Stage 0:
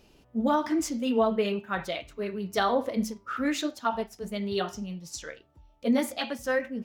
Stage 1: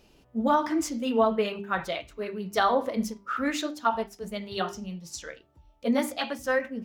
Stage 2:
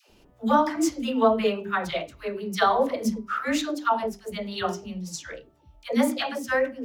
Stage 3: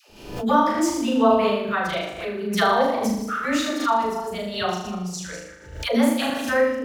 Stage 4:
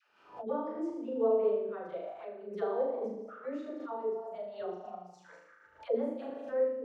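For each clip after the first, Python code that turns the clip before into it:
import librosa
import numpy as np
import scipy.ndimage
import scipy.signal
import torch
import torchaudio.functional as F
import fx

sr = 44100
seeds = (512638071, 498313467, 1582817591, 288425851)

y1 = fx.hum_notches(x, sr, base_hz=50, count=8)
y1 = fx.dynamic_eq(y1, sr, hz=1100.0, q=1.1, threshold_db=-39.0, ratio=4.0, max_db=4)
y2 = fx.dispersion(y1, sr, late='lows', ms=99.0, hz=570.0)
y2 = F.gain(torch.from_numpy(y2), 2.5).numpy()
y3 = fx.reverse_delay(y2, sr, ms=150, wet_db=-9.0)
y3 = fx.room_flutter(y3, sr, wall_m=6.6, rt60_s=0.69)
y3 = fx.pre_swell(y3, sr, db_per_s=82.0)
y4 = fx.auto_wah(y3, sr, base_hz=440.0, top_hz=1500.0, q=4.3, full_db=-21.5, direction='down')
y4 = F.gain(torch.from_numpy(y4), -4.0).numpy()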